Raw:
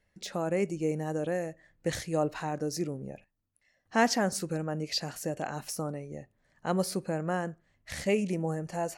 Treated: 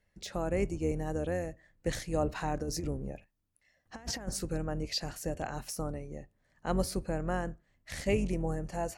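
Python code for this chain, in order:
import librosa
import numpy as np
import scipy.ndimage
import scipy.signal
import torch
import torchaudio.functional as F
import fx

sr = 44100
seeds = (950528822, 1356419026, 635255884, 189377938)

y = fx.octave_divider(x, sr, octaves=2, level_db=-1.0)
y = fx.over_compress(y, sr, threshold_db=-31.0, ratio=-0.5, at=(2.27, 4.27), fade=0.02)
y = y * librosa.db_to_amplitude(-2.5)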